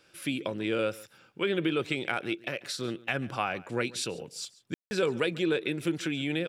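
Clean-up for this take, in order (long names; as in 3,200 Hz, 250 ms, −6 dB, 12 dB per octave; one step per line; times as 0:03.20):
ambience match 0:04.74–0:04.91
echo removal 140 ms −21 dB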